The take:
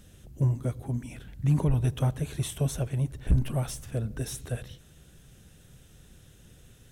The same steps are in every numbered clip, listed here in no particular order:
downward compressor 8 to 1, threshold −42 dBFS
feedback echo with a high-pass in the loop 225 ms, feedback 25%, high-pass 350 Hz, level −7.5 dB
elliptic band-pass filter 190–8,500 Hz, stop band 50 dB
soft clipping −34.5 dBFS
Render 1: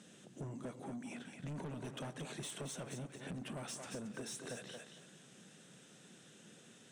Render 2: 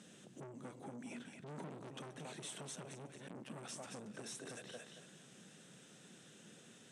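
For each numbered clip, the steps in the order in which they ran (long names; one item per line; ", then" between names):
elliptic band-pass filter, then soft clipping, then feedback echo with a high-pass in the loop, then downward compressor
feedback echo with a high-pass in the loop, then soft clipping, then downward compressor, then elliptic band-pass filter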